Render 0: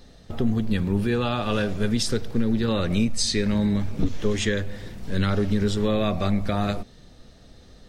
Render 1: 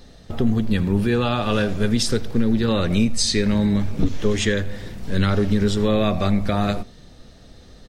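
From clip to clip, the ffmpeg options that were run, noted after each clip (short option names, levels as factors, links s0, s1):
-af "aecho=1:1:84:0.0794,volume=1.5"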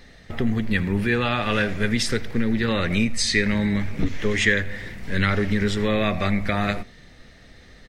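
-af "equalizer=f=2000:w=1.9:g=14.5,volume=0.668"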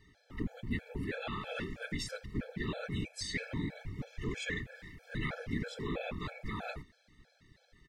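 -af "afftfilt=real='hypot(re,im)*cos(2*PI*random(0))':imag='hypot(re,im)*sin(2*PI*random(1))':win_size=512:overlap=0.75,afftfilt=real='re*gt(sin(2*PI*3.1*pts/sr)*(1-2*mod(floor(b*sr/1024/440),2)),0)':imag='im*gt(sin(2*PI*3.1*pts/sr)*(1-2*mod(floor(b*sr/1024/440),2)),0)':win_size=1024:overlap=0.75,volume=0.447"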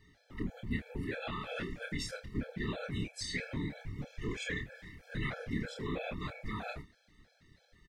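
-filter_complex "[0:a]asplit=2[s0][s1];[s1]adelay=28,volume=0.473[s2];[s0][s2]amix=inputs=2:normalize=0,volume=0.891"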